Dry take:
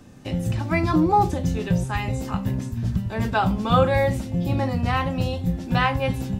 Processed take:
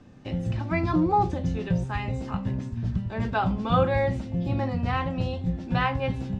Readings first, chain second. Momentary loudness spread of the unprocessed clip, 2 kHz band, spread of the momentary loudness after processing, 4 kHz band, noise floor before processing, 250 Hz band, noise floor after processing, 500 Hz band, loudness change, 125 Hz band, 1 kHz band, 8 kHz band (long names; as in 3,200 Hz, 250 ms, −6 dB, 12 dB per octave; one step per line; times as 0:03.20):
8 LU, −4.5 dB, 8 LU, −6.0 dB, −34 dBFS, −3.5 dB, −37 dBFS, −4.0 dB, −4.0 dB, −3.5 dB, −4.0 dB, below −10 dB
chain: high-frequency loss of the air 120 metres
level −3.5 dB